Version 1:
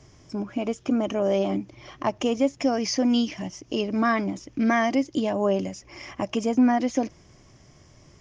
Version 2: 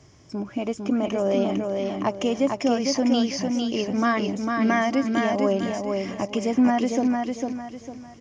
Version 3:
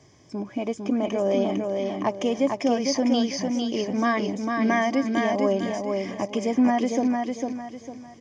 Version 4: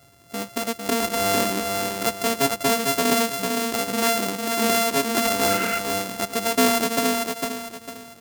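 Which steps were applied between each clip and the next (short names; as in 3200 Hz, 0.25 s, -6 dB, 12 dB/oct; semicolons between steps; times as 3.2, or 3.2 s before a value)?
HPF 55 Hz; feedback echo 0.452 s, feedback 33%, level -4 dB
notch comb 1400 Hz
sample sorter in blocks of 64 samples; high shelf 4700 Hz +8 dB; spectral repair 5.47–5.77, 1200–3000 Hz before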